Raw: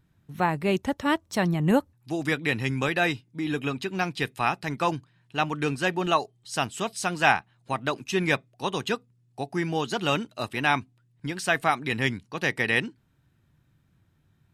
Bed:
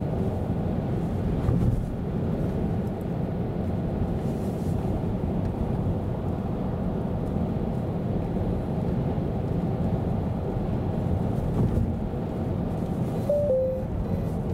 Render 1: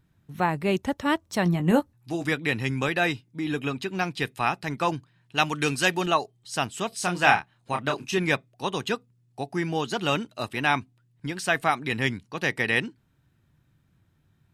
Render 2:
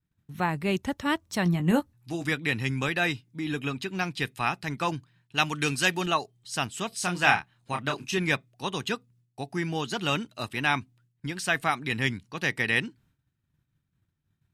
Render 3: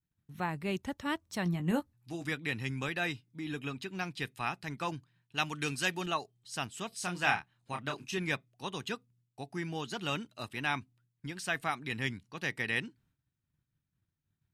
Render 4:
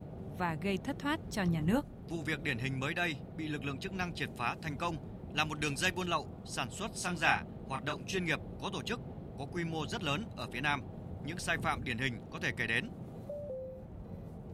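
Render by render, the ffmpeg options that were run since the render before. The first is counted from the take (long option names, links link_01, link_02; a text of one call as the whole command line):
ffmpeg -i in.wav -filter_complex "[0:a]asettb=1/sr,asplit=3[link_01][link_02][link_03];[link_01]atrim=end=1.444[link_04];[link_02]atrim=start=1.44:end=2.27,asetpts=PTS-STARTPTS,afade=type=in:duration=0.004:curve=qsin,afade=type=out:start_time=0.826:duration=0.004:curve=qsin,asplit=2[link_05][link_06];[link_06]adelay=17,volume=-7.5dB[link_07];[link_05][link_07]amix=inputs=2:normalize=0,atrim=end_sample=36603[link_08];[link_03]atrim=start=2.266[link_09];[link_04][link_08]acrossfade=duration=0.004:curve1=hsin:curve2=qsin[link_10];[link_10][link_09]acrossfade=duration=0.004:curve1=qsin:curve2=hsin,asettb=1/sr,asplit=3[link_11][link_12][link_13];[link_11]atrim=end=5.374[link_14];[link_12]atrim=start=5.37:end=6.06,asetpts=PTS-STARTPTS,afade=type=in:duration=0.004:curve=qsin,afade=type=out:start_time=0.686:duration=0.004:curve=qsin,highshelf=frequency=2600:gain=11.5[link_15];[link_13]atrim=start=6.056[link_16];[link_14][link_15]acrossfade=duration=0.004:curve1=hsin:curve2=qsin[link_17];[link_17][link_16]acrossfade=duration=0.004:curve1=qsin:curve2=hsin,asettb=1/sr,asplit=3[link_18][link_19][link_20];[link_18]atrim=end=6.894[link_21];[link_19]atrim=start=6.89:end=8.18,asetpts=PTS-STARTPTS,afade=type=in:duration=0.004:curve=qsin,afade=type=out:start_time=1.286:duration=0.004:curve=qsin,asplit=2[link_22][link_23];[link_23]adelay=28,volume=-5dB[link_24];[link_22][link_24]amix=inputs=2:normalize=0,atrim=end_sample=56889[link_25];[link_20]atrim=start=8.176[link_26];[link_21][link_25]acrossfade=duration=0.004:curve1=hsin:curve2=qsin[link_27];[link_27][link_26]acrossfade=duration=0.004:curve1=qsin:curve2=hsin" out.wav
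ffmpeg -i in.wav -af "equalizer=frequency=570:width_type=o:width=2:gain=-5,agate=range=-33dB:threshold=-57dB:ratio=3:detection=peak" out.wav
ffmpeg -i in.wav -af "volume=-7.5dB" out.wav
ffmpeg -i in.wav -i bed.wav -filter_complex "[1:a]volume=-18.5dB[link_01];[0:a][link_01]amix=inputs=2:normalize=0" out.wav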